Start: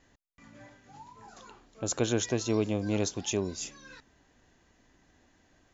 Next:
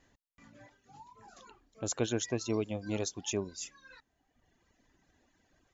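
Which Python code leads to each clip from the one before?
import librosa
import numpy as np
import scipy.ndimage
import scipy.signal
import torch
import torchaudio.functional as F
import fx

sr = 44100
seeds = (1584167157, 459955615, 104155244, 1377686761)

y = fx.dereverb_blind(x, sr, rt60_s=1.3)
y = y * 10.0 ** (-3.0 / 20.0)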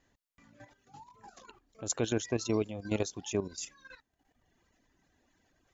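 y = fx.level_steps(x, sr, step_db=11)
y = y * 10.0 ** (5.0 / 20.0)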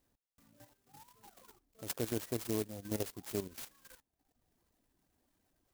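y = fx.clock_jitter(x, sr, seeds[0], jitter_ms=0.13)
y = y * 10.0 ** (-5.5 / 20.0)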